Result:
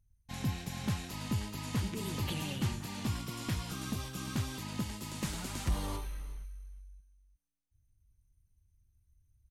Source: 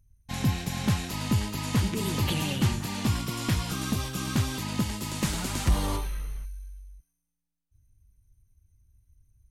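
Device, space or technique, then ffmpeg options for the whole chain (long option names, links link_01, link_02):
ducked delay: -filter_complex "[0:a]asplit=3[link_01][link_02][link_03];[link_02]adelay=357,volume=-5dB[link_04];[link_03]apad=whole_len=434892[link_05];[link_04][link_05]sidechaincompress=threshold=-42dB:ratio=8:attack=16:release=1240[link_06];[link_01][link_06]amix=inputs=2:normalize=0,volume=-8.5dB"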